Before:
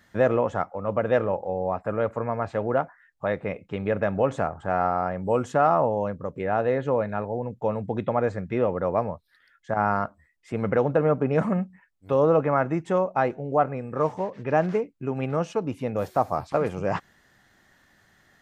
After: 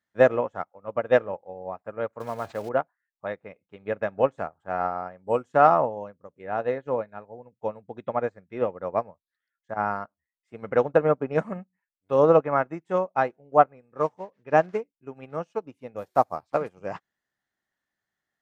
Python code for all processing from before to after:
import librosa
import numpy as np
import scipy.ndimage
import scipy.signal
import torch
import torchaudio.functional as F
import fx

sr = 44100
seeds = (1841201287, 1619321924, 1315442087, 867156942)

y = fx.chain(x, sr, fx.block_float(bits=5),
    fx.high_shelf(hz=5800.0, db=-6.5),
    fx.env_flatten(amount_pct=70), at=(2.2, 2.69))
y = fx.low_shelf(y, sr, hz=180.0, db=-8.0)
y = fx.upward_expand(y, sr, threshold_db=-38.0, expansion=2.5)
y = y * librosa.db_to_amplitude(6.5)